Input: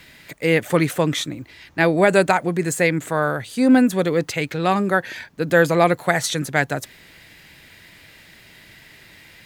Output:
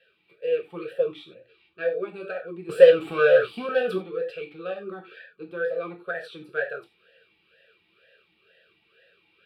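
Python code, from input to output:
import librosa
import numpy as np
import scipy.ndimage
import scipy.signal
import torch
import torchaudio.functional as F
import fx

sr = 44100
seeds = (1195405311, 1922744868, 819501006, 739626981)

y = fx.rider(x, sr, range_db=4, speed_s=0.5)
y = fx.leveller(y, sr, passes=5, at=(2.69, 3.98))
y = fx.fixed_phaser(y, sr, hz=1400.0, stages=8)
y = fx.rev_gated(y, sr, seeds[0], gate_ms=120, shape='falling', drr_db=1.0)
y = fx.vowel_sweep(y, sr, vowels='e-u', hz=2.1)
y = y * librosa.db_to_amplitude(-1.0)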